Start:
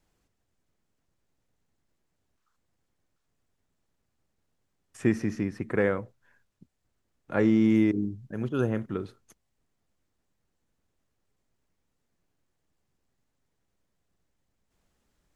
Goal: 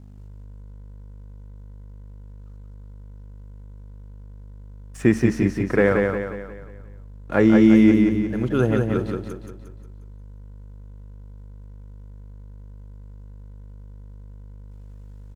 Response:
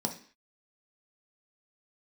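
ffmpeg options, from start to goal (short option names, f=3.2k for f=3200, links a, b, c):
-af "aeval=exprs='val(0)+0.00501*(sin(2*PI*50*n/s)+sin(2*PI*2*50*n/s)/2+sin(2*PI*3*50*n/s)/3+sin(2*PI*4*50*n/s)/4+sin(2*PI*5*50*n/s)/5)':c=same,aeval=exprs='sgn(val(0))*max(abs(val(0))-0.00158,0)':c=same,aecho=1:1:178|356|534|712|890|1068:0.631|0.29|0.134|0.0614|0.0283|0.013,volume=7dB"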